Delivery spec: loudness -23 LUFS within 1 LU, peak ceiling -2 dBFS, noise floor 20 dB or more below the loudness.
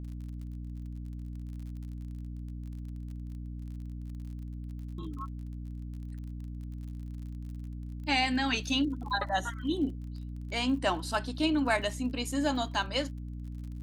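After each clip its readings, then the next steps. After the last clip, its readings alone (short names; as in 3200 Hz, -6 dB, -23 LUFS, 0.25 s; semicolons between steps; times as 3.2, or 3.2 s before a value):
ticks 38/s; hum 60 Hz; harmonics up to 300 Hz; hum level -37 dBFS; loudness -34.0 LUFS; peak -13.5 dBFS; loudness target -23.0 LUFS
-> de-click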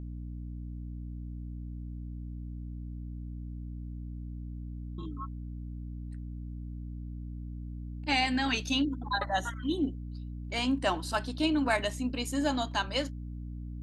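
ticks 0/s; hum 60 Hz; harmonics up to 300 Hz; hum level -37 dBFS
-> de-hum 60 Hz, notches 5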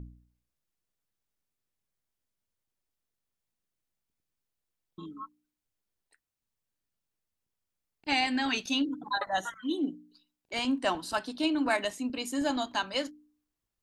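hum none; loudness -31.0 LUFS; peak -14.0 dBFS; loudness target -23.0 LUFS
-> gain +8 dB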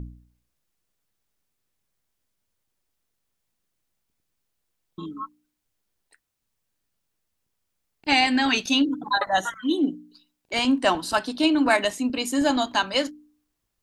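loudness -23.0 LUFS; peak -6.0 dBFS; noise floor -79 dBFS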